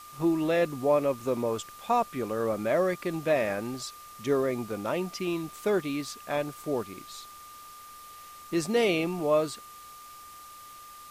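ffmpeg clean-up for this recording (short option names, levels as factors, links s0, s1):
-af "adeclick=t=4,bandreject=f=1200:w=30,afwtdn=0.0028"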